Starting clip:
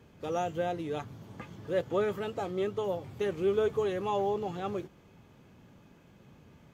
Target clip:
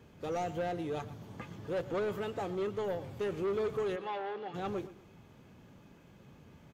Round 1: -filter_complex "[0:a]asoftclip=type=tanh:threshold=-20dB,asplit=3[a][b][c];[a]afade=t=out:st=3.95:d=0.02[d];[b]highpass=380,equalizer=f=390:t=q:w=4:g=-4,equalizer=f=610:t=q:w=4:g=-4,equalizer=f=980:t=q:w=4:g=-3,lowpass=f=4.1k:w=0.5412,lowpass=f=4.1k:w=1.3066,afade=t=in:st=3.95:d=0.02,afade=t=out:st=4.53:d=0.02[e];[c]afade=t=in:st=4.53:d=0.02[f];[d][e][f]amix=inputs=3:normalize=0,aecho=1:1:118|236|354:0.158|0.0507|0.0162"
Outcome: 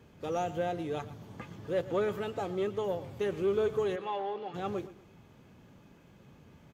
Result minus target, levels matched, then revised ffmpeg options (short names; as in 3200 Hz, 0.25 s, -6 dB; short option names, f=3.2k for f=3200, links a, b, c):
soft clip: distortion -12 dB
-filter_complex "[0:a]asoftclip=type=tanh:threshold=-29dB,asplit=3[a][b][c];[a]afade=t=out:st=3.95:d=0.02[d];[b]highpass=380,equalizer=f=390:t=q:w=4:g=-4,equalizer=f=610:t=q:w=4:g=-4,equalizer=f=980:t=q:w=4:g=-3,lowpass=f=4.1k:w=0.5412,lowpass=f=4.1k:w=1.3066,afade=t=in:st=3.95:d=0.02,afade=t=out:st=4.53:d=0.02[e];[c]afade=t=in:st=4.53:d=0.02[f];[d][e][f]amix=inputs=3:normalize=0,aecho=1:1:118|236|354:0.158|0.0507|0.0162"